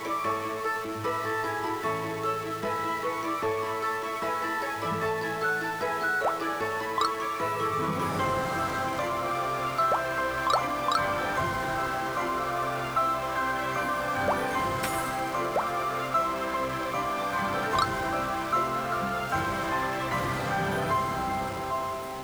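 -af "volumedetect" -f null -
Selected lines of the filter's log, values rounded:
mean_volume: -28.9 dB
max_volume: -10.8 dB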